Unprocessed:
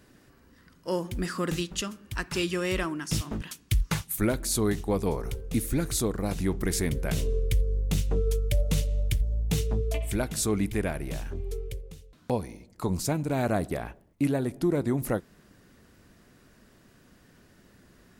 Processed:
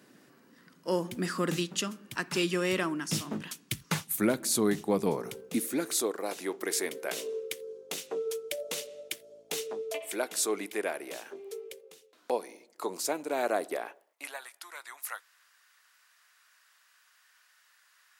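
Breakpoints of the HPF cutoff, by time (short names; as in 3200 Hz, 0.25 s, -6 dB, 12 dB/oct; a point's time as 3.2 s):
HPF 24 dB/oct
5.15 s 160 Hz
6.18 s 360 Hz
13.85 s 360 Hz
14.48 s 1100 Hz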